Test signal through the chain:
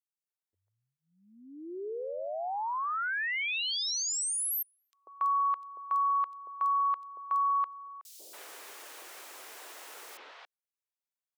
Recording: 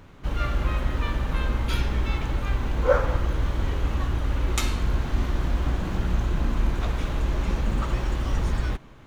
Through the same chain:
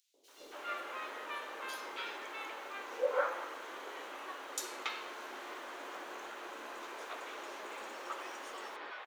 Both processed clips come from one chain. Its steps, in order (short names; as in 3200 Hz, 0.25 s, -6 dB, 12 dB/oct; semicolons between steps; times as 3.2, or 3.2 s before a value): inverse Chebyshev high-pass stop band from 160 Hz, stop band 50 dB; three bands offset in time highs, lows, mids 0.14/0.28 s, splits 560/4100 Hz; gain -6.5 dB